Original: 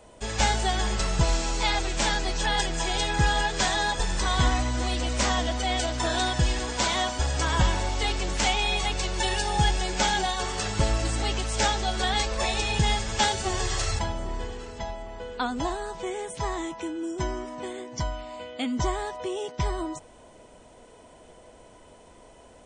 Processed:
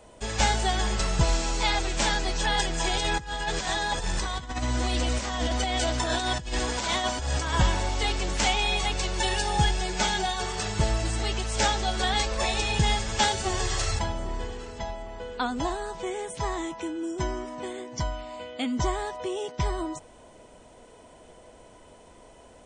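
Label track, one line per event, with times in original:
2.840000	7.540000	compressor with a negative ratio -27 dBFS, ratio -0.5
9.650000	11.550000	comb of notches 270 Hz

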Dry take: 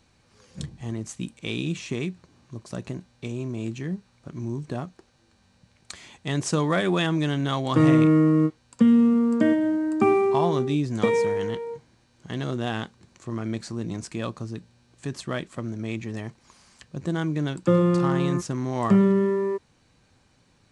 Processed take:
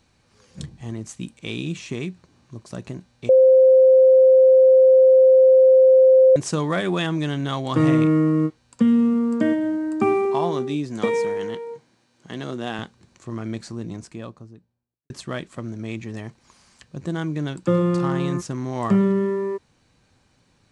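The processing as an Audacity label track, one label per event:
3.290000	6.360000	bleep 522 Hz -9 dBFS
10.250000	12.790000	high-pass 170 Hz
13.530000	15.100000	studio fade out

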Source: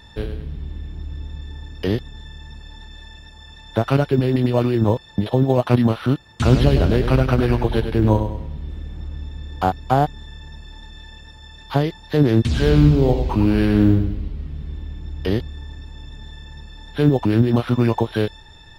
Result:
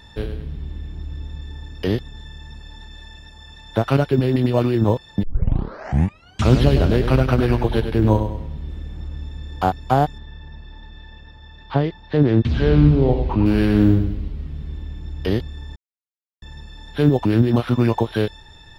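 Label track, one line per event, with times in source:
5.230000	5.230000	tape start 1.29 s
10.180000	13.460000	distance through air 210 m
15.760000	16.420000	mute

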